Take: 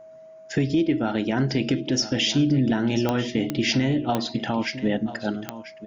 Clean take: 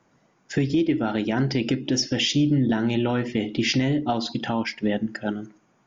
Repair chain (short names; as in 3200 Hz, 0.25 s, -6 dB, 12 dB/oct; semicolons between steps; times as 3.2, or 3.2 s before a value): de-click; notch 640 Hz, Q 30; inverse comb 0.991 s -13.5 dB